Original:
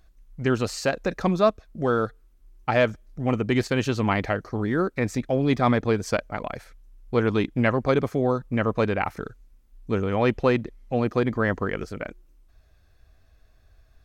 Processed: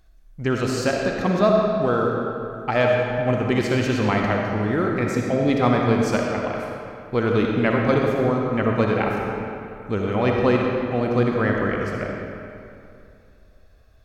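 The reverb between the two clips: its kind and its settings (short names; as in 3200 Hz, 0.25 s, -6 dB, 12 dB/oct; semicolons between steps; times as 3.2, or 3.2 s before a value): digital reverb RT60 2.6 s, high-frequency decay 0.7×, pre-delay 20 ms, DRR -0.5 dB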